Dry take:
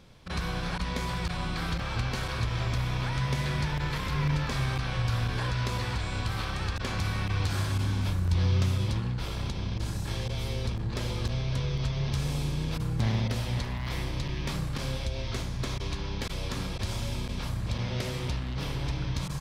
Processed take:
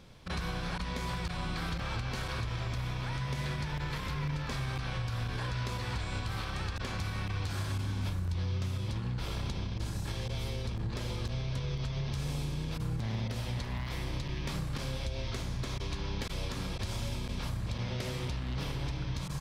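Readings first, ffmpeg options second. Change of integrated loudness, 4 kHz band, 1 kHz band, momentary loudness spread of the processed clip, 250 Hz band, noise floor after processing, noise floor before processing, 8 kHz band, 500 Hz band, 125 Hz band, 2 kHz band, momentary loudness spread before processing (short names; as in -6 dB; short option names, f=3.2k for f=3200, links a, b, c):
-5.0 dB, -4.5 dB, -4.5 dB, 2 LU, -4.5 dB, -38 dBFS, -35 dBFS, -4.5 dB, -4.5 dB, -5.0 dB, -4.5 dB, 5 LU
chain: -af "alimiter=level_in=2dB:limit=-24dB:level=0:latency=1:release=265,volume=-2dB"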